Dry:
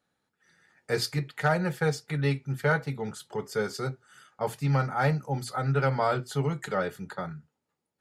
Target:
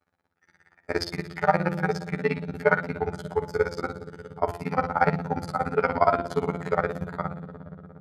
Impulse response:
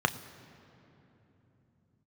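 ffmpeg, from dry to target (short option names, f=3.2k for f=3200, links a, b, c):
-filter_complex "[1:a]atrim=start_sample=2205,asetrate=33075,aresample=44100[a];[0:a][a]afir=irnorm=-1:irlink=0,afftfilt=real='hypot(re,im)*cos(PI*b)':imag='0':win_size=2048:overlap=0.75,tremolo=f=17:d=1,bandreject=f=171.5:t=h:w=4,bandreject=f=343:t=h:w=4,bandreject=f=514.5:t=h:w=4,bandreject=f=686:t=h:w=4,bandreject=f=857.5:t=h:w=4,bandreject=f=1.029k:t=h:w=4,bandreject=f=1.2005k:t=h:w=4,bandreject=f=1.372k:t=h:w=4,bandreject=f=1.5435k:t=h:w=4,bandreject=f=1.715k:t=h:w=4,bandreject=f=1.8865k:t=h:w=4,bandreject=f=2.058k:t=h:w=4,bandreject=f=2.2295k:t=h:w=4,bandreject=f=2.401k:t=h:w=4,bandreject=f=2.5725k:t=h:w=4,bandreject=f=2.744k:t=h:w=4,bandreject=f=2.9155k:t=h:w=4,bandreject=f=3.087k:t=h:w=4,bandreject=f=3.2585k:t=h:w=4,bandreject=f=3.43k:t=h:w=4,bandreject=f=3.6015k:t=h:w=4,bandreject=f=3.773k:t=h:w=4,bandreject=f=3.9445k:t=h:w=4,volume=-2dB"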